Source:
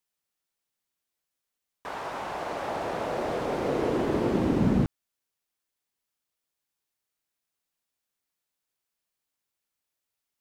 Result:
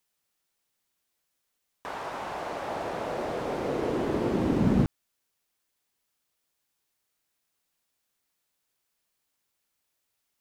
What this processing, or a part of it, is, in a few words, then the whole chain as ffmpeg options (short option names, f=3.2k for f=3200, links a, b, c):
de-esser from a sidechain: -filter_complex "[0:a]asplit=2[a][b];[b]highpass=5.2k,apad=whole_len=458872[c];[a][c]sidechaincompress=threshold=-58dB:ratio=8:attack=1.4:release=33,volume=6dB"